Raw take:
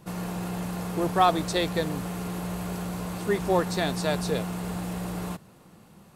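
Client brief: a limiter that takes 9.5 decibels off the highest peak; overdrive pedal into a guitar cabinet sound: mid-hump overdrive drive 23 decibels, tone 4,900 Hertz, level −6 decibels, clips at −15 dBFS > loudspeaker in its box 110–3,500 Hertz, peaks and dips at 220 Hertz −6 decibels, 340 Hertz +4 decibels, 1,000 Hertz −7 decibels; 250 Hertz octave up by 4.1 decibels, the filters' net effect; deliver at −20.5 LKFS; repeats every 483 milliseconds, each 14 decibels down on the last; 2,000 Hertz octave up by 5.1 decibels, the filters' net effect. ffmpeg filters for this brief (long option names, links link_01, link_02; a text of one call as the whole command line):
ffmpeg -i in.wav -filter_complex "[0:a]equalizer=frequency=250:width_type=o:gain=7.5,equalizer=frequency=2000:width_type=o:gain=6.5,alimiter=limit=-16.5dB:level=0:latency=1,aecho=1:1:483|966:0.2|0.0399,asplit=2[link_01][link_02];[link_02]highpass=frequency=720:poles=1,volume=23dB,asoftclip=type=tanh:threshold=-15dB[link_03];[link_01][link_03]amix=inputs=2:normalize=0,lowpass=frequency=4900:poles=1,volume=-6dB,highpass=110,equalizer=frequency=220:width_type=q:width=4:gain=-6,equalizer=frequency=340:width_type=q:width=4:gain=4,equalizer=frequency=1000:width_type=q:width=4:gain=-7,lowpass=frequency=3500:width=0.5412,lowpass=frequency=3500:width=1.3066,volume=3.5dB" out.wav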